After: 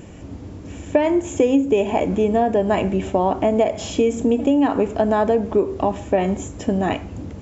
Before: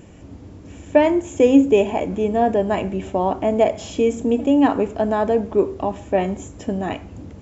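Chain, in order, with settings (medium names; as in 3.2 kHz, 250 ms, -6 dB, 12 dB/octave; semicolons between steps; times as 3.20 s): compression 6:1, threshold -18 dBFS, peak gain reduction 10.5 dB; trim +4.5 dB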